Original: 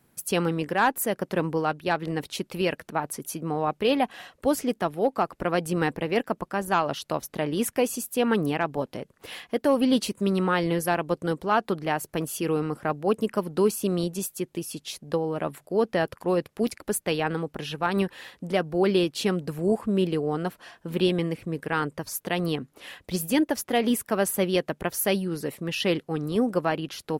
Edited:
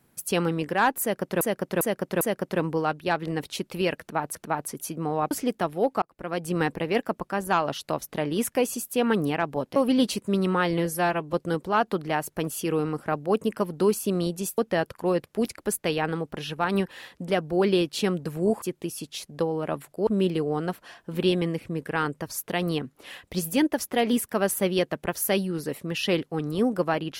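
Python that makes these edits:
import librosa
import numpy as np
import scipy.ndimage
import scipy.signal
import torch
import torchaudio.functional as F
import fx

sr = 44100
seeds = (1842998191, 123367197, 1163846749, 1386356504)

y = fx.edit(x, sr, fx.repeat(start_s=1.01, length_s=0.4, count=4),
    fx.repeat(start_s=2.8, length_s=0.35, count=2),
    fx.cut(start_s=3.76, length_s=0.76),
    fx.fade_in_span(start_s=5.23, length_s=0.56),
    fx.cut(start_s=8.97, length_s=0.72),
    fx.stretch_span(start_s=10.78, length_s=0.32, factor=1.5),
    fx.move(start_s=14.35, length_s=1.45, to_s=19.84), tone=tone)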